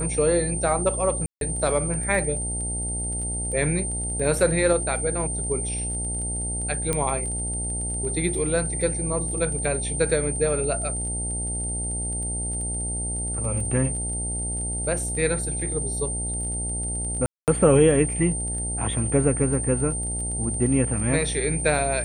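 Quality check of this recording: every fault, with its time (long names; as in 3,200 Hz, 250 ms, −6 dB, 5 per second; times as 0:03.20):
mains buzz 60 Hz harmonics 15 −31 dBFS
surface crackle 21 per second −33 dBFS
whistle 8,900 Hz −28 dBFS
0:01.26–0:01.41: drop-out 152 ms
0:06.93: click −10 dBFS
0:17.26–0:17.48: drop-out 218 ms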